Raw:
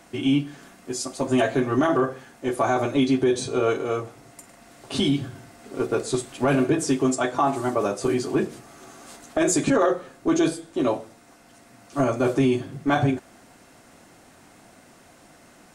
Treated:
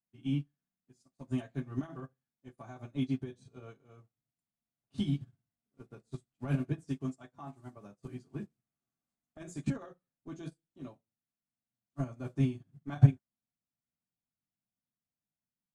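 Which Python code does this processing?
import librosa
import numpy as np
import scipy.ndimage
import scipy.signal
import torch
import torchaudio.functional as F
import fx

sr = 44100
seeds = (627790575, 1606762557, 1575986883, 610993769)

y = fx.low_shelf_res(x, sr, hz=260.0, db=10.5, q=1.5)
y = fx.upward_expand(y, sr, threshold_db=-36.0, expansion=2.5)
y = y * 10.0 ** (-7.5 / 20.0)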